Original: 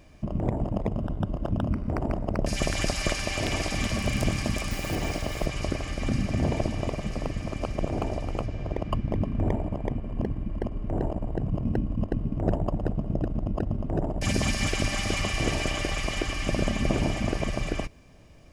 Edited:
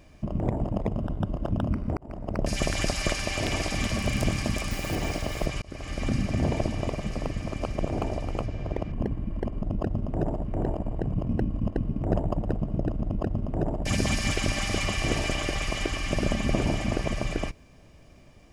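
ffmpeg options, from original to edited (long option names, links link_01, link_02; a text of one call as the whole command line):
ffmpeg -i in.wav -filter_complex "[0:a]asplit=6[link_01][link_02][link_03][link_04][link_05][link_06];[link_01]atrim=end=1.97,asetpts=PTS-STARTPTS,afade=type=out:start_time=1.966:duration=0.004:curve=hsin[link_07];[link_02]atrim=start=1.97:end=5.62,asetpts=PTS-STARTPTS,afade=type=in:duration=0.47,afade=type=out:start_time=3.646:duration=0.004:curve=hsin[link_08];[link_03]atrim=start=5.62:end=8.922,asetpts=PTS-STARTPTS,afade=type=in:duration=0.35[link_09];[link_04]atrim=start=10.108:end=10.812[link_10];[link_05]atrim=start=13.378:end=14.212[link_11];[link_06]atrim=start=10.808[link_12];[link_07][link_08][link_09]concat=n=3:v=0:a=1[link_13];[link_13][link_10]acrossfade=duration=0.004:curve1=hsin:curve2=hsin[link_14];[link_14][link_11]acrossfade=duration=0.004:curve1=hsin:curve2=hsin[link_15];[link_15][link_12]acrossfade=duration=0.004:curve1=hsin:curve2=hsin" out.wav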